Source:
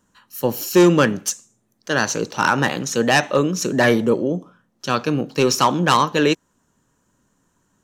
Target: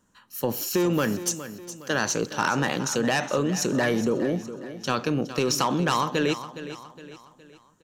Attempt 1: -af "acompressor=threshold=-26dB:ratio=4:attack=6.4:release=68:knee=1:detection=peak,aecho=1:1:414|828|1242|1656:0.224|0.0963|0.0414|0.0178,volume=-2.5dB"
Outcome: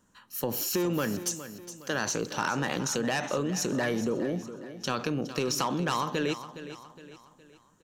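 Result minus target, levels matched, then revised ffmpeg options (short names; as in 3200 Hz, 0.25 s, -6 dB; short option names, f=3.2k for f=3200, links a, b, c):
compressor: peak gain reduction +5 dB
-af "acompressor=threshold=-19dB:ratio=4:attack=6.4:release=68:knee=1:detection=peak,aecho=1:1:414|828|1242|1656:0.224|0.0963|0.0414|0.0178,volume=-2.5dB"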